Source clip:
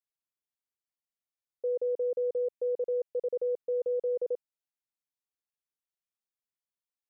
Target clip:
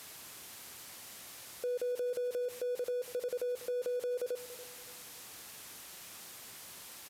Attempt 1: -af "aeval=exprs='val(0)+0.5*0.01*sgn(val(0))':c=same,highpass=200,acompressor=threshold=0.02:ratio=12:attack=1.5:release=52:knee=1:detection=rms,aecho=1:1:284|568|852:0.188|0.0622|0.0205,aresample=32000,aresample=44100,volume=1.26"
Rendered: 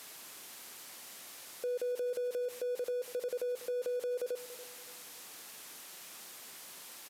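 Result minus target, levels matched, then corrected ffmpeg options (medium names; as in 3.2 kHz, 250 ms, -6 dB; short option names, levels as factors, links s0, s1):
125 Hz band -7.0 dB
-af "aeval=exprs='val(0)+0.5*0.01*sgn(val(0))':c=same,highpass=67,acompressor=threshold=0.02:ratio=12:attack=1.5:release=52:knee=1:detection=rms,aecho=1:1:284|568|852:0.188|0.0622|0.0205,aresample=32000,aresample=44100,volume=1.26"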